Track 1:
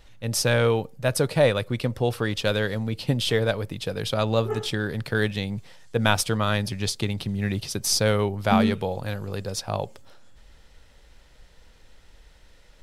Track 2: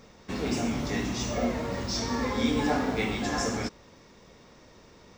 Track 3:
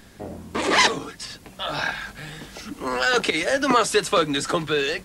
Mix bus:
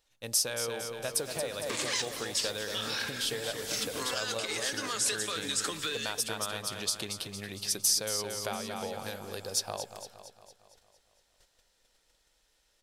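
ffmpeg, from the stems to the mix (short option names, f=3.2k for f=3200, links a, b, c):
-filter_complex "[0:a]bandreject=f=2k:w=27,volume=-4.5dB,asplit=3[a][b][c];[b]volume=-14dB[d];[1:a]adelay=750,volume=-12.5dB[e];[2:a]equalizer=f=660:w=0.89:g=-11.5,acompressor=threshold=-31dB:ratio=2.5,adelay=1150,volume=2dB,asplit=2[f][g];[g]volume=-21dB[h];[c]apad=whole_len=261460[i];[e][i]sidechaincompress=threshold=-35dB:ratio=3:attack=7.7:release=367[j];[a][f]amix=inputs=2:normalize=0,agate=range=-15dB:threshold=-50dB:ratio=16:detection=peak,acompressor=threshold=-31dB:ratio=10,volume=0dB[k];[d][h]amix=inputs=2:normalize=0,aecho=0:1:229|458|687|916|1145|1374|1603|1832:1|0.54|0.292|0.157|0.085|0.0459|0.0248|0.0134[l];[j][k][l]amix=inputs=3:normalize=0,bass=f=250:g=-12,treble=f=4k:g=10"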